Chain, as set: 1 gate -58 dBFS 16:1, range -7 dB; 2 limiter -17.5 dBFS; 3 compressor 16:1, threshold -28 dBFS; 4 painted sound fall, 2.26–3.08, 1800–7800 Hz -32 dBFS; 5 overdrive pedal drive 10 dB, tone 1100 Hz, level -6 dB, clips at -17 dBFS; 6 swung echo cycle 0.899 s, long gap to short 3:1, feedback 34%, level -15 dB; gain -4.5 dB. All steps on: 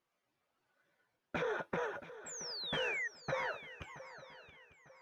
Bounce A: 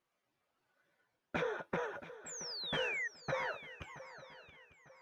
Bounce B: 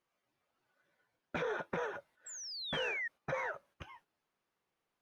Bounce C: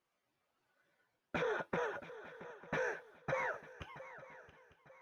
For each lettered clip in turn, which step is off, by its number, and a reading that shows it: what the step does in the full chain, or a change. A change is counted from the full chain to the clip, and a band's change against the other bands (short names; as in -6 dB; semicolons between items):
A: 2, mean gain reduction 2.0 dB; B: 6, echo-to-direct -13.0 dB to none; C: 4, 4 kHz band -13.5 dB